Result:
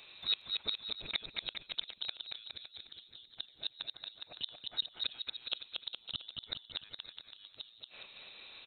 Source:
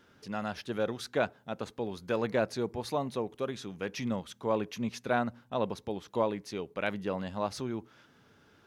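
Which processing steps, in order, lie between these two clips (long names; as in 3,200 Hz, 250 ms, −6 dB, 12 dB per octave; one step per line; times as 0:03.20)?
gate with flip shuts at −29 dBFS, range −35 dB
voice inversion scrambler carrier 4,000 Hz
bouncing-ball delay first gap 230 ms, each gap 0.8×, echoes 5
level +7 dB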